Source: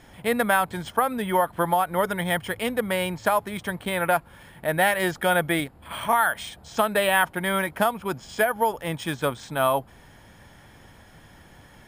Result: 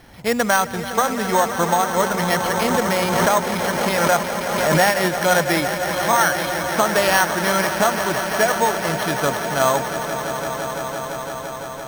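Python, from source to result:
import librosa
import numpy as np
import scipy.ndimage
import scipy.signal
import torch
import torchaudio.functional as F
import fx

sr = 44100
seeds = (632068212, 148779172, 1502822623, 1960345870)

y = fx.echo_swell(x, sr, ms=170, loudest=5, wet_db=-12)
y = np.repeat(y[::6], 6)[:len(y)]
y = fx.pre_swell(y, sr, db_per_s=30.0, at=(2.32, 4.85))
y = F.gain(torch.from_numpy(y), 3.5).numpy()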